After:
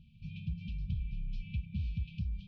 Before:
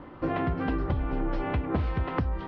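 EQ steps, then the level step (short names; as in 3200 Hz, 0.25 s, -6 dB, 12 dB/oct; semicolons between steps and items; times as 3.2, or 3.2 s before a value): brick-wall FIR band-stop 220–2300 Hz; notch 2800 Hz, Q 19; -6.5 dB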